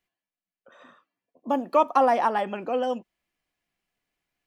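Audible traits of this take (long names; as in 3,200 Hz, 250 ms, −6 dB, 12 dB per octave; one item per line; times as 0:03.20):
background noise floor −94 dBFS
spectral slope +0.5 dB per octave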